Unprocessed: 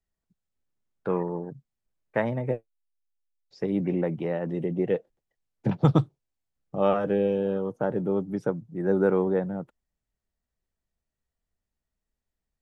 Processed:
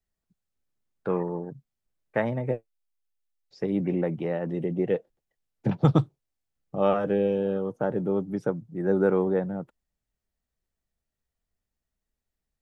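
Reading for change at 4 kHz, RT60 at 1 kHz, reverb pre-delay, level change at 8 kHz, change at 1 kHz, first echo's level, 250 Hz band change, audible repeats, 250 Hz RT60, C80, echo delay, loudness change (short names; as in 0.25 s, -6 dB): 0.0 dB, none, none, n/a, -0.5 dB, none, 0.0 dB, none, none, none, none, 0.0 dB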